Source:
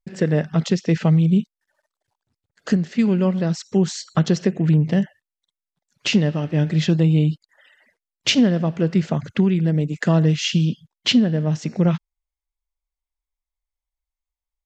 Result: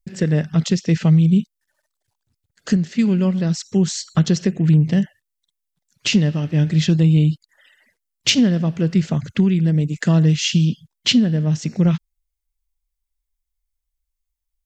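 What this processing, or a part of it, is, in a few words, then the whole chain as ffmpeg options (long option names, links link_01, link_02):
smiley-face EQ: -af "lowshelf=frequency=90:gain=8.5,equalizer=frequency=710:width_type=o:width=2.3:gain=-6,highshelf=frequency=6800:gain=8,volume=1.5dB"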